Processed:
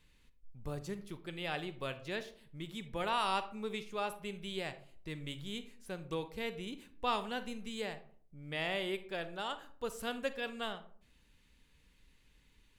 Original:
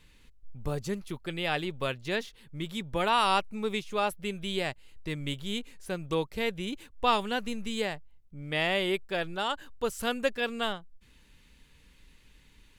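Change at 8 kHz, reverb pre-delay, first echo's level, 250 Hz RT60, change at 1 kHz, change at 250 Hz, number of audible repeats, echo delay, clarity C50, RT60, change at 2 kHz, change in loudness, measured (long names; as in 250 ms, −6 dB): −8.5 dB, 35 ms, no echo audible, 0.65 s, −8.0 dB, −8.0 dB, no echo audible, no echo audible, 13.0 dB, 0.50 s, −8.5 dB, −8.0 dB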